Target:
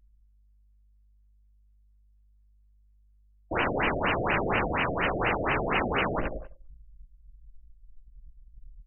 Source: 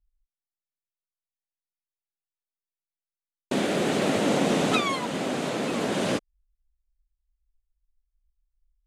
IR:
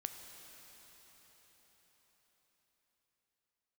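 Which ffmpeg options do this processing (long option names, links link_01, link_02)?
-filter_complex "[0:a]asplit=2[link_01][link_02];[link_02]highpass=frequency=720:poles=1,volume=37dB,asoftclip=type=tanh:threshold=-9dB[link_03];[link_01][link_03]amix=inputs=2:normalize=0,lowpass=frequency=2100:poles=1,volume=-6dB,asplit=2[link_04][link_05];[link_05]aecho=0:1:95|190|285|380|475:0.211|0.108|0.055|0.028|0.0143[link_06];[link_04][link_06]amix=inputs=2:normalize=0,acrossover=split=320[link_07][link_08];[link_08]acompressor=threshold=-27dB:ratio=10[link_09];[link_07][link_09]amix=inputs=2:normalize=0,asubboost=boost=11.5:cutoff=63,aeval=exprs='val(0)+0.00141*(sin(2*PI*50*n/s)+sin(2*PI*2*50*n/s)/2+sin(2*PI*3*50*n/s)/3+sin(2*PI*4*50*n/s)/4+sin(2*PI*5*50*n/s)/5)':channel_layout=same,asplit=2[link_10][link_11];[link_11]adelay=17,volume=-9dB[link_12];[link_10][link_12]amix=inputs=2:normalize=0,anlmdn=6.31,crystalizer=i=9:c=0,aresample=16000,aeval=exprs='(mod(8.91*val(0)+1,2)-1)/8.91':channel_layout=same,aresample=44100,afftfilt=real='re*lt(b*sr/1024,710*pow(3100/710,0.5+0.5*sin(2*PI*4.2*pts/sr)))':imag='im*lt(b*sr/1024,710*pow(3100/710,0.5+0.5*sin(2*PI*4.2*pts/sr)))':win_size=1024:overlap=0.75,volume=2.5dB"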